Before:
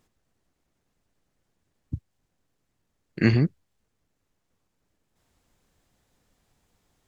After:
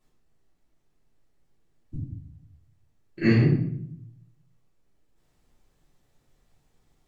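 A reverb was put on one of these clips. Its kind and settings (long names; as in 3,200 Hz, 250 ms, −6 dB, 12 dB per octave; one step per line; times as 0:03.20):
rectangular room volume 130 cubic metres, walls mixed, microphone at 3 metres
level −11.5 dB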